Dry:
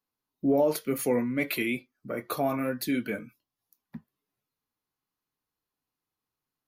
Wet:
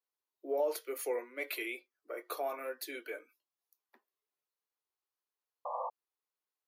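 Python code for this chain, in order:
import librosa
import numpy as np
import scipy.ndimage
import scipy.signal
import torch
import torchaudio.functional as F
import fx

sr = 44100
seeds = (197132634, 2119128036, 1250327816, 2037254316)

y = scipy.signal.sosfilt(scipy.signal.butter(8, 350.0, 'highpass', fs=sr, output='sos'), x)
y = fx.spec_paint(y, sr, seeds[0], shape='noise', start_s=5.65, length_s=0.25, low_hz=490.0, high_hz=1200.0, level_db=-30.0)
y = y * 10.0 ** (-7.5 / 20.0)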